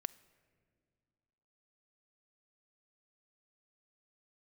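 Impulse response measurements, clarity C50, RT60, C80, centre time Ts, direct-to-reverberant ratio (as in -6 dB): 19.5 dB, 1.9 s, 21.0 dB, 3 ms, 18.0 dB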